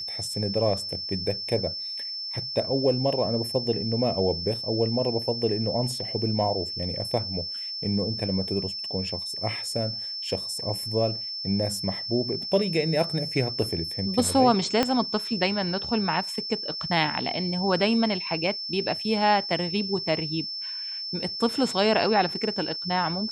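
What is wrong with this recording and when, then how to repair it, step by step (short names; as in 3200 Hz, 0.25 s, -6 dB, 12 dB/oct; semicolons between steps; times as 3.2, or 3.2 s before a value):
tone 5300 Hz -31 dBFS
14.83 pop -8 dBFS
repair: de-click; notch 5300 Hz, Q 30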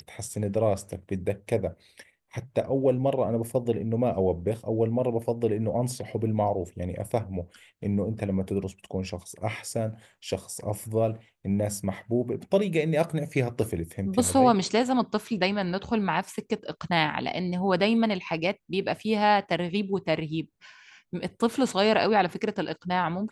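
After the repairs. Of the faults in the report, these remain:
14.83 pop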